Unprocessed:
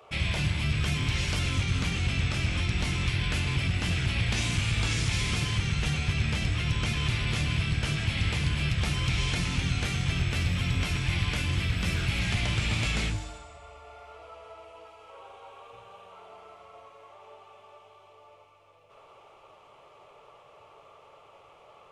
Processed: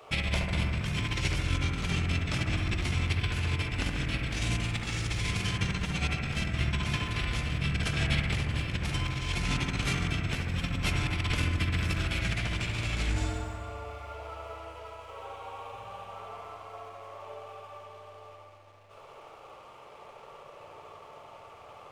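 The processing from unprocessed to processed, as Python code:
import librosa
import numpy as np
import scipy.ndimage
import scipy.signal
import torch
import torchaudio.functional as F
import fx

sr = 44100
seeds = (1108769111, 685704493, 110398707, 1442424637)

y = fx.over_compress(x, sr, threshold_db=-31.0, ratio=-0.5)
y = np.sign(y) * np.maximum(np.abs(y) - 10.0 ** (-59.5 / 20.0), 0.0)
y = fx.echo_bbd(y, sr, ms=70, stages=1024, feedback_pct=78, wet_db=-4.0)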